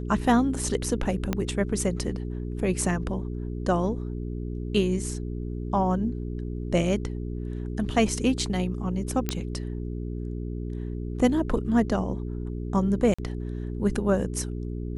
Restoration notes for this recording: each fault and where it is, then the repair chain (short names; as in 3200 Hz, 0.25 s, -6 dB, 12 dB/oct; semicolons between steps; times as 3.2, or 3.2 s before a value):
hum 60 Hz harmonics 7 -32 dBFS
1.33 pop -12 dBFS
9.29 pop -10 dBFS
13.14–13.19 gap 45 ms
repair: de-click; de-hum 60 Hz, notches 7; interpolate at 13.14, 45 ms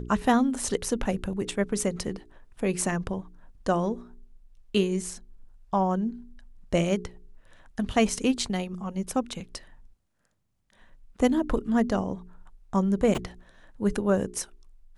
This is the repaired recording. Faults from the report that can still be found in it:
1.33 pop